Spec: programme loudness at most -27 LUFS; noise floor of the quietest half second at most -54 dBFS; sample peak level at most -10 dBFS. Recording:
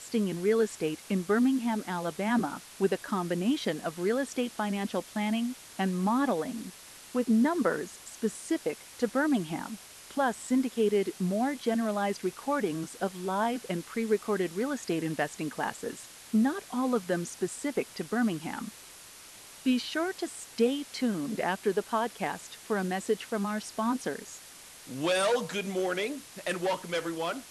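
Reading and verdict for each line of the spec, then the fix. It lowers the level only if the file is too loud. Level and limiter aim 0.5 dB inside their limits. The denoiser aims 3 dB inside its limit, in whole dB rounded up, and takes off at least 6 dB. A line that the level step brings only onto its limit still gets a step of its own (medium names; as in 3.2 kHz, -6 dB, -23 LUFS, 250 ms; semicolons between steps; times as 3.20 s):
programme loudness -30.5 LUFS: pass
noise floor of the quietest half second -50 dBFS: fail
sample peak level -14.5 dBFS: pass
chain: noise reduction 7 dB, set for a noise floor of -50 dBFS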